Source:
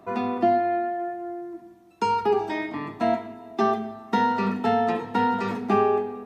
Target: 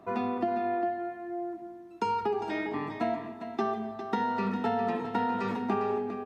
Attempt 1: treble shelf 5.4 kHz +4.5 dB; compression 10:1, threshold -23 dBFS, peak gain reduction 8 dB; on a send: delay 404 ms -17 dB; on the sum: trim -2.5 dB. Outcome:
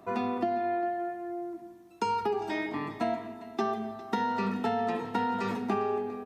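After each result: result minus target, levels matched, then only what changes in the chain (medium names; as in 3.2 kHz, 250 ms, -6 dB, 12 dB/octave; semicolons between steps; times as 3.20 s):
8 kHz band +6.0 dB; echo-to-direct -7.5 dB
change: treble shelf 5.4 kHz -6 dB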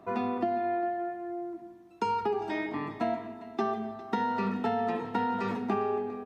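echo-to-direct -7.5 dB
change: delay 404 ms -9.5 dB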